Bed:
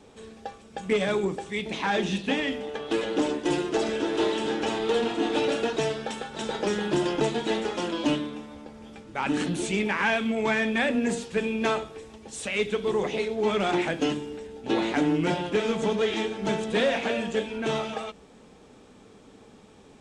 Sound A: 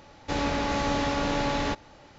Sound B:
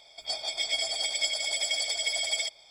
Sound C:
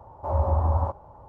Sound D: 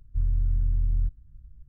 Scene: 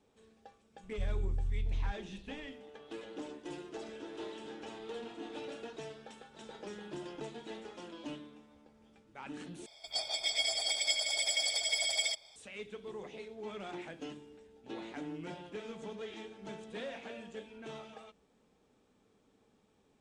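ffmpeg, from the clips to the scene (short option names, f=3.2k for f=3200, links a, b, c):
-filter_complex "[0:a]volume=-18.5dB,asplit=2[a][b];[a]atrim=end=9.664[c];[2:a]atrim=end=2.7,asetpts=PTS-STARTPTS,volume=-3dB[d];[b]atrim=start=12.356[e];[4:a]atrim=end=1.68,asetpts=PTS-STARTPTS,volume=-9.5dB,afade=t=in:d=0.004:c=hsin,afade=t=out:st=1.676:d=0.004:c=hsin,adelay=830[f];[c][d]acrossfade=d=0.004:c1=hsin:c2=hsin[g];[g][e]acrossfade=d=0.004:c1=hsin:c2=hsin[h];[h][f]amix=inputs=2:normalize=0"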